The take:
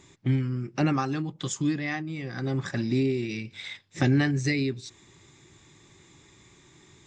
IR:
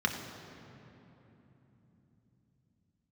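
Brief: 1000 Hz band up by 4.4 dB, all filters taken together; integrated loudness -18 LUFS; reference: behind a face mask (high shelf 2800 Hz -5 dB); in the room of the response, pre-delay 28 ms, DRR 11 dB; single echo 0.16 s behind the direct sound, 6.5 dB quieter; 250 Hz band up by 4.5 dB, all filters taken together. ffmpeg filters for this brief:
-filter_complex "[0:a]equalizer=f=250:t=o:g=5,equalizer=f=1k:t=o:g=6.5,aecho=1:1:160:0.473,asplit=2[a][b];[1:a]atrim=start_sample=2205,adelay=28[c];[b][c]afir=irnorm=-1:irlink=0,volume=-20dB[d];[a][d]amix=inputs=2:normalize=0,highshelf=f=2.8k:g=-5,volume=6dB"

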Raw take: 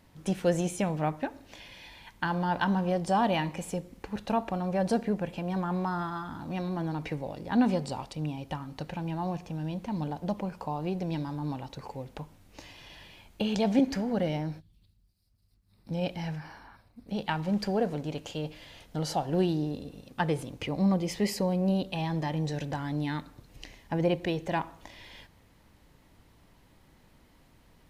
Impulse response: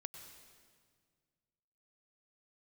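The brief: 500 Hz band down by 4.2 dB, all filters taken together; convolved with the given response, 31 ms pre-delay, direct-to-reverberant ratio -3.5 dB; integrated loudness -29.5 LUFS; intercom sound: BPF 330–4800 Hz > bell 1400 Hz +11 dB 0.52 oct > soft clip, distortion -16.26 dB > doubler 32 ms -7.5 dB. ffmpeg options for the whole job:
-filter_complex "[0:a]equalizer=f=500:t=o:g=-4.5,asplit=2[a][b];[1:a]atrim=start_sample=2205,adelay=31[c];[b][c]afir=irnorm=-1:irlink=0,volume=7.5dB[d];[a][d]amix=inputs=2:normalize=0,highpass=330,lowpass=4.8k,equalizer=f=1.4k:t=o:w=0.52:g=11,asoftclip=threshold=-17dB,asplit=2[e][f];[f]adelay=32,volume=-7.5dB[g];[e][g]amix=inputs=2:normalize=0,volume=1dB"

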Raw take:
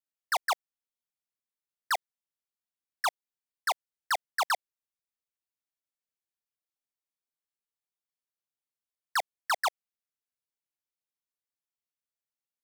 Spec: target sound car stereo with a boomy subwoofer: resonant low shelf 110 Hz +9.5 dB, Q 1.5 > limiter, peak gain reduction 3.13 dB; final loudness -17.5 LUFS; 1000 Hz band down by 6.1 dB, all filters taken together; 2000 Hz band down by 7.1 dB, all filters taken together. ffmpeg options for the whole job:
-af "lowshelf=f=110:t=q:w=1.5:g=9.5,equalizer=f=1k:t=o:g=-6,equalizer=f=2k:t=o:g=-7,volume=21dB,alimiter=limit=-6dB:level=0:latency=1"

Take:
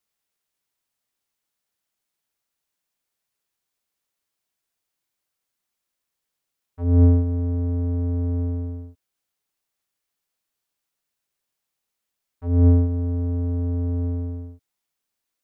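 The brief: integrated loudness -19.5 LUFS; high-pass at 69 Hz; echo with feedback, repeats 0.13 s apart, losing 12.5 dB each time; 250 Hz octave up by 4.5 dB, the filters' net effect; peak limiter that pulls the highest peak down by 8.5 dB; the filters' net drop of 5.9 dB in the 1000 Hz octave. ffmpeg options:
-af "highpass=69,equalizer=f=250:t=o:g=5,equalizer=f=1k:t=o:g=-8.5,alimiter=limit=-13dB:level=0:latency=1,aecho=1:1:130|260|390:0.237|0.0569|0.0137,volume=4.5dB"

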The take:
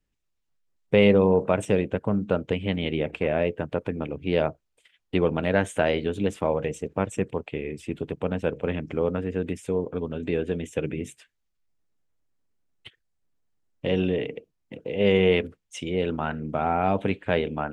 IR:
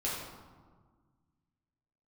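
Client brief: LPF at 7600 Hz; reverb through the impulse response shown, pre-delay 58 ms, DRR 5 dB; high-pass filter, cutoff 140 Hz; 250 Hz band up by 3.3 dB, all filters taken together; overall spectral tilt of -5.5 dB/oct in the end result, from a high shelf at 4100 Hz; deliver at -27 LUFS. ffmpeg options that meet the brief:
-filter_complex "[0:a]highpass=140,lowpass=7.6k,equalizer=f=250:t=o:g=5.5,highshelf=f=4.1k:g=7,asplit=2[a][b];[1:a]atrim=start_sample=2205,adelay=58[c];[b][c]afir=irnorm=-1:irlink=0,volume=-10.5dB[d];[a][d]amix=inputs=2:normalize=0,volume=-4.5dB"

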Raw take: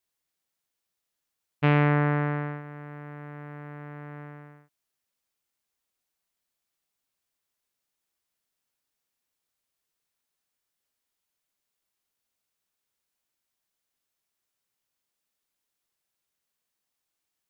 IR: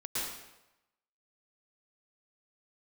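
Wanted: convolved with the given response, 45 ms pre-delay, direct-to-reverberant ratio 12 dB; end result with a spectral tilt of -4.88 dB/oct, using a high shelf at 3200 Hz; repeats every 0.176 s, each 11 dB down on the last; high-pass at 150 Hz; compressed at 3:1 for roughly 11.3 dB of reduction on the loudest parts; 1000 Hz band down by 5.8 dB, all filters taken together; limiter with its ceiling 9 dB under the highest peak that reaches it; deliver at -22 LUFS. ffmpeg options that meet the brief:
-filter_complex "[0:a]highpass=150,equalizer=f=1k:t=o:g=-7,highshelf=f=3.2k:g=-8.5,acompressor=threshold=-34dB:ratio=3,alimiter=level_in=3dB:limit=-24dB:level=0:latency=1,volume=-3dB,aecho=1:1:176|352|528:0.282|0.0789|0.0221,asplit=2[a][b];[1:a]atrim=start_sample=2205,adelay=45[c];[b][c]afir=irnorm=-1:irlink=0,volume=-16.5dB[d];[a][d]amix=inputs=2:normalize=0,volume=21.5dB"

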